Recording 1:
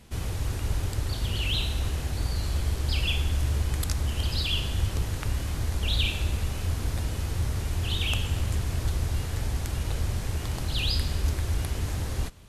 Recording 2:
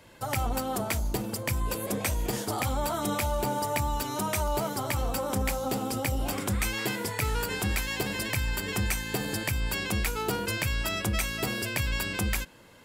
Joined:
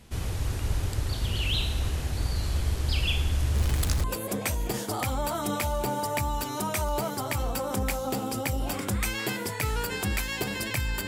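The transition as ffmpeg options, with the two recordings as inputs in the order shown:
-filter_complex "[0:a]asettb=1/sr,asplit=3[a][b][c];[a]atrim=end=3.554[d];[b]atrim=start=3.55:end=4.04,asetpts=PTS-STARTPTS,afade=t=in:d=0.004:c=qsin,afade=t=out:st=0.486:d=0.004:c=qsin,aeval=exprs='val(0)+0.5*0.0316*sgn(val(0))':c=same[e];[c]atrim=start=4.036[f];[d][e]acrossfade=d=0.004:c1=hsin:c2=qsin[g];[g][f]acrossfade=d=0.004:c1=qsin:c2=hsin,apad=whole_dur=11.07,atrim=end=11.07,atrim=end=4.042[h];[1:a]atrim=start=1.628:end=8.66[i];[h][i]acrossfade=d=0.004:c1=hsin:c2=hsin"

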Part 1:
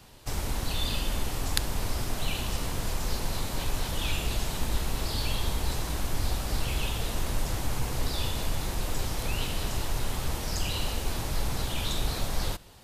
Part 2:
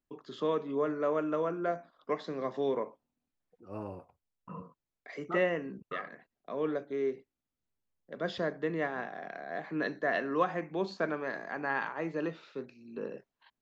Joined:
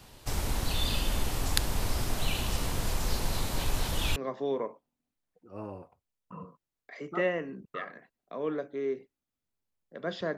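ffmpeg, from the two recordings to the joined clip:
-filter_complex "[0:a]apad=whole_dur=10.37,atrim=end=10.37,atrim=end=4.162[a];[1:a]atrim=start=2.328:end=8.54[b];[a][b]acrossfade=d=0.004:c1=hsin:c2=hsin"

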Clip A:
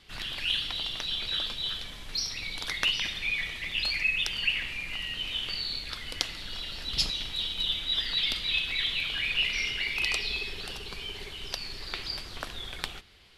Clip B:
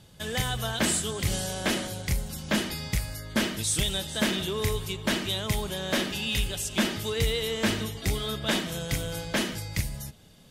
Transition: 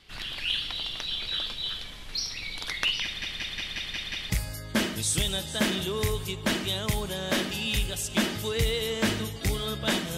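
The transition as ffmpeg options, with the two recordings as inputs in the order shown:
-filter_complex "[0:a]apad=whole_dur=10.17,atrim=end=10.17,asplit=7[a][b][c][d][e][f][g];[a]atrim=end=3.222[h];[b]atrim=start=3.038:end=3.222[i];[c]atrim=start=3.038:end=3.222[j];[d]atrim=start=3.038:end=3.222[k];[e]atrim=start=3.038:end=3.222[l];[f]atrim=start=3.038:end=3.222[m];[g]atrim=start=3.038:end=3.222[n];[1:a]atrim=start=2.908:end=8.78[o];[h][i]acrossfade=d=0.004:c1=hsin:c2=hsin[p];[p][j]acrossfade=d=0.004:c1=hsin:c2=hsin[q];[q][k]acrossfade=d=0.004:c1=hsin:c2=hsin[r];[r][l]acrossfade=d=0.004:c1=hsin:c2=hsin[s];[s][m]acrossfade=d=0.004:c1=hsin:c2=hsin[t];[t][n]acrossfade=d=0.004:c1=hsin:c2=hsin[u];[u][o]acrossfade=d=0.004:c1=hsin:c2=hsin"

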